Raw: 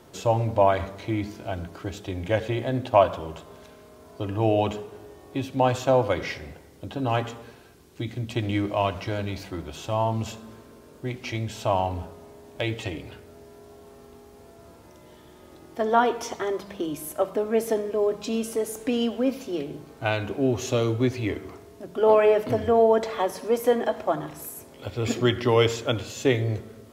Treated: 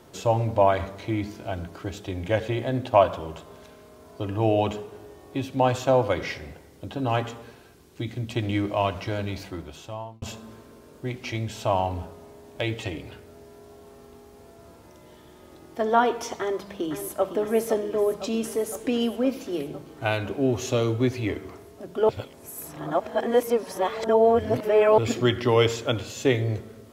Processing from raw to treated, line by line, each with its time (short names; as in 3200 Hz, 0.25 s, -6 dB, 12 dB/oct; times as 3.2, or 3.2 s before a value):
9.42–10.22 fade out linear
16.39–17.26 echo throw 0.51 s, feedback 75%, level -9.5 dB
22.09–24.98 reverse